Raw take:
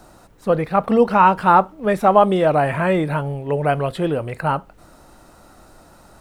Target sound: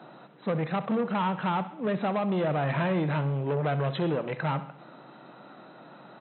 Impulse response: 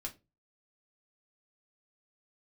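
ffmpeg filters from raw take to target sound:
-filter_complex "[0:a]acrossover=split=180[s0][s1];[s1]acompressor=threshold=0.0891:ratio=10[s2];[s0][s2]amix=inputs=2:normalize=0,asoftclip=type=tanh:threshold=0.0708,asplit=2[s3][s4];[s4]aecho=0:1:65|130|195|260|325:0.2|0.106|0.056|0.0297|0.0157[s5];[s3][s5]amix=inputs=2:normalize=0,afftfilt=real='re*between(b*sr/4096,120,4100)':imag='im*between(b*sr/4096,120,4100)':win_size=4096:overlap=0.75"

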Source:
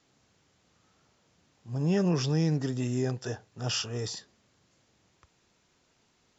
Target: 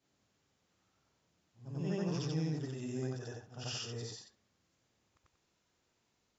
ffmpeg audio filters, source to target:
-af "afftfilt=real='re':imag='-im':win_size=8192:overlap=0.75,volume=0.562"

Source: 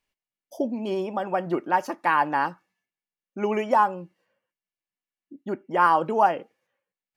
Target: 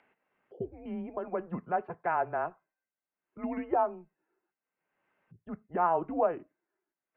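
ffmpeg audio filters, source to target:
-filter_complex "[0:a]highpass=f=160:t=q:w=0.5412,highpass=f=160:t=q:w=1.307,lowpass=f=3200:t=q:w=0.5176,lowpass=f=3200:t=q:w=0.7071,lowpass=f=3200:t=q:w=1.932,afreqshift=-170,acrossover=split=160 2000:gain=0.1 1 0.126[s0][s1][s2];[s0][s1][s2]amix=inputs=3:normalize=0,acompressor=mode=upward:threshold=0.00794:ratio=2.5,volume=0.422"

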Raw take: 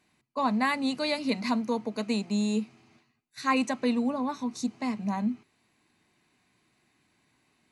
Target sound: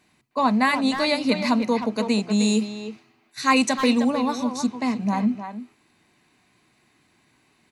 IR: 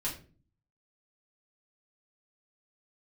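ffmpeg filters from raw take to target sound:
-filter_complex "[0:a]asplit=2[s0][s1];[s1]adelay=310,highpass=300,lowpass=3400,asoftclip=type=hard:threshold=0.0794,volume=0.447[s2];[s0][s2]amix=inputs=2:normalize=0,asplit=3[s3][s4][s5];[s3]afade=t=out:st=2.39:d=0.02[s6];[s4]adynamicequalizer=threshold=0.00562:dfrequency=2900:dqfactor=0.7:tfrequency=2900:tqfactor=0.7:attack=5:release=100:ratio=0.375:range=3.5:mode=boostabove:tftype=highshelf,afade=t=in:st=2.39:d=0.02,afade=t=out:st=4.51:d=0.02[s7];[s5]afade=t=in:st=4.51:d=0.02[s8];[s6][s7][s8]amix=inputs=3:normalize=0,volume=2.11"

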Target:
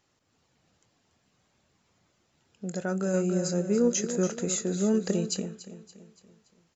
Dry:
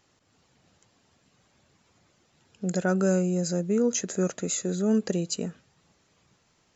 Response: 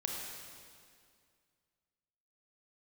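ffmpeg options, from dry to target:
-filter_complex "[0:a]asplit=2[s0][s1];[s1]adelay=25,volume=0.211[s2];[s0][s2]amix=inputs=2:normalize=0,aecho=1:1:285|570|855|1140|1425:0.282|0.132|0.0623|0.0293|0.0138,asplit=3[s3][s4][s5];[s3]afade=t=out:st=3.13:d=0.02[s6];[s4]acontrast=22,afade=t=in:st=3.13:d=0.02,afade=t=out:st=5.4:d=0.02[s7];[s5]afade=t=in:st=5.4:d=0.02[s8];[s6][s7][s8]amix=inputs=3:normalize=0,volume=0.531"

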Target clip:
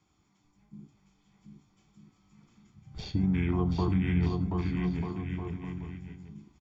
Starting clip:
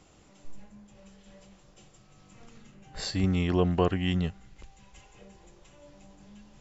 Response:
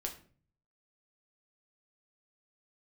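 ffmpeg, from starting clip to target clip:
-filter_complex "[0:a]highpass=56,afwtdn=0.0141,aecho=1:1:0.9:0.94,acrossover=split=490|2400[s0][s1][s2];[s0]acompressor=threshold=0.0447:ratio=4[s3];[s1]acompressor=threshold=0.00891:ratio=4[s4];[s2]acompressor=threshold=0.00282:ratio=4[s5];[s3][s4][s5]amix=inputs=3:normalize=0,asplit=2[s6][s7];[s7]asetrate=33038,aresample=44100,atempo=1.33484,volume=0.447[s8];[s6][s8]amix=inputs=2:normalize=0,aecho=1:1:730|1241|1599|1849|2024:0.631|0.398|0.251|0.158|0.1,asplit=2[s9][s10];[1:a]atrim=start_sample=2205,afade=t=out:st=0.18:d=0.01,atrim=end_sample=8379[s11];[s10][s11]afir=irnorm=-1:irlink=0,volume=1.33[s12];[s9][s12]amix=inputs=2:normalize=0,volume=0.501"

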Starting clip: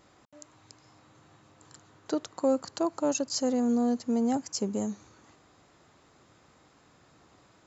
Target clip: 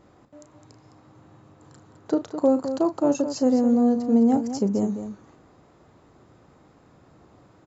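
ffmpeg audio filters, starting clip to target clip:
-af "tiltshelf=f=1300:g=7,aecho=1:1:34.99|209.9:0.282|0.316,volume=1.12"

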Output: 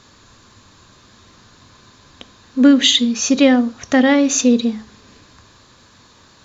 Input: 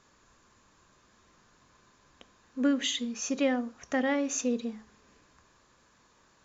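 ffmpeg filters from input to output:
-af "acontrast=85,equalizer=f=100:t=o:w=0.67:g=10,equalizer=f=250:t=o:w=0.67:g=4,equalizer=f=4000:t=o:w=0.67:g=9,volume=1.88"

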